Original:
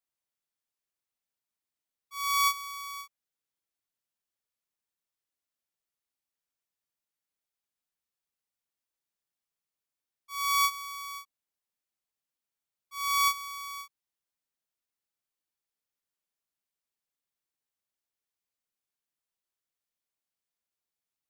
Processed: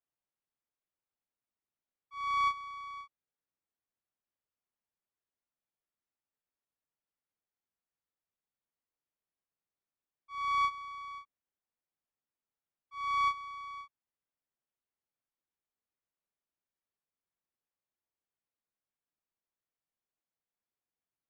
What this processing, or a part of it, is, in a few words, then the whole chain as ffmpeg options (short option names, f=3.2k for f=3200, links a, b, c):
phone in a pocket: -af "lowpass=3.2k,highshelf=f=2.4k:g=-11.5"